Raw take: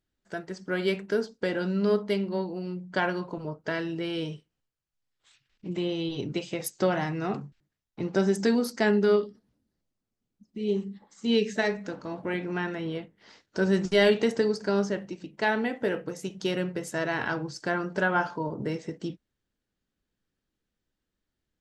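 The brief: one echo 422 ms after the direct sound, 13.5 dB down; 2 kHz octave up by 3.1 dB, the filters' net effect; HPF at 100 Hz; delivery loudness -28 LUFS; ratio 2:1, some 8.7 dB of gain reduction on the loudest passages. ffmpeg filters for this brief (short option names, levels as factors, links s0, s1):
-af "highpass=100,equalizer=f=2000:t=o:g=4,acompressor=threshold=0.0224:ratio=2,aecho=1:1:422:0.211,volume=2"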